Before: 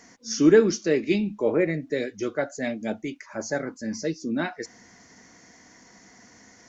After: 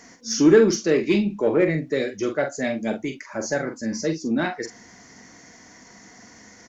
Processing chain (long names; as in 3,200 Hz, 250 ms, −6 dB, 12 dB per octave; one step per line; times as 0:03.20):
double-tracking delay 44 ms −7.5 dB
in parallel at −5 dB: soft clipping −21 dBFS, distortion −7 dB